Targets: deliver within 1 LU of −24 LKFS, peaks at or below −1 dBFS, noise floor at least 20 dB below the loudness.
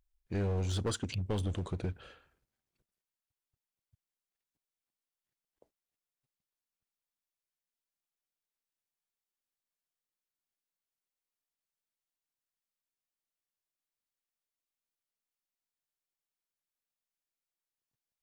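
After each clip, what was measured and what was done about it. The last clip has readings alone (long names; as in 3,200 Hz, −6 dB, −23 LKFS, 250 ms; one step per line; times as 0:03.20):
share of clipped samples 0.5%; peaks flattened at −28.0 dBFS; integrated loudness −35.5 LKFS; sample peak −28.0 dBFS; target loudness −24.0 LKFS
→ clipped peaks rebuilt −28 dBFS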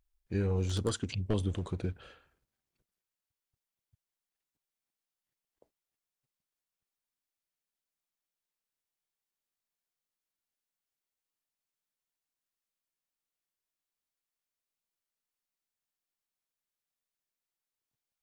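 share of clipped samples 0.0%; integrated loudness −34.0 LKFS; sample peak −19.0 dBFS; target loudness −24.0 LKFS
→ level +10 dB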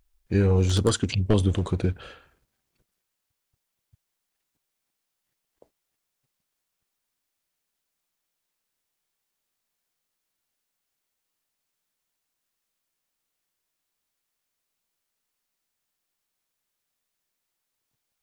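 integrated loudness −24.0 LKFS; sample peak −9.0 dBFS; background noise floor −82 dBFS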